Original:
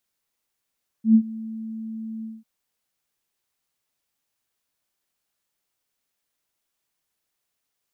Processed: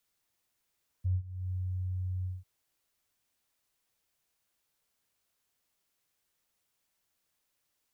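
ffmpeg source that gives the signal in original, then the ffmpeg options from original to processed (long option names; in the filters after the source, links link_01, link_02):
-f lavfi -i "aevalsrc='0.355*sin(2*PI*222*t)':duration=1.395:sample_rate=44100,afade=type=in:duration=0.108,afade=type=out:start_time=0.108:duration=0.072:silence=0.0891,afade=type=out:start_time=1.2:duration=0.195"
-af "acompressor=threshold=-31dB:ratio=5,afreqshift=-130"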